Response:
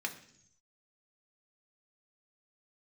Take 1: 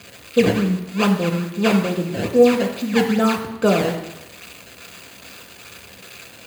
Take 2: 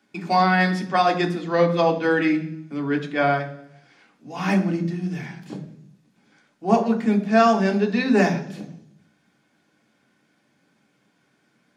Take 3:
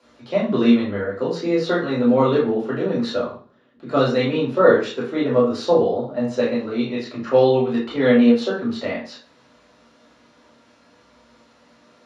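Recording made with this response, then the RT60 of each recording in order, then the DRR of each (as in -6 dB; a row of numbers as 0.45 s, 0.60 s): 2; 0.95 s, 0.65 s, 0.45 s; 4.5 dB, 2.5 dB, -7.5 dB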